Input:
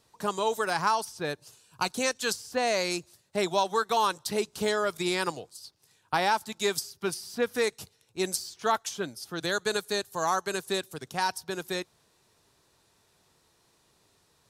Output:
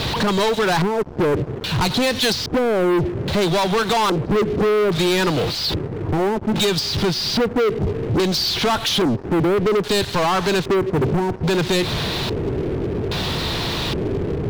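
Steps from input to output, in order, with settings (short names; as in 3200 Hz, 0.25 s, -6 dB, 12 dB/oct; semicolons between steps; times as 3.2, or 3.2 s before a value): zero-crossing step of -39 dBFS; LPF 5900 Hz; low shelf 350 Hz +11 dB; compressor, threshold -27 dBFS, peak gain reduction 10 dB; LFO low-pass square 0.61 Hz 410–3800 Hz; sample leveller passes 5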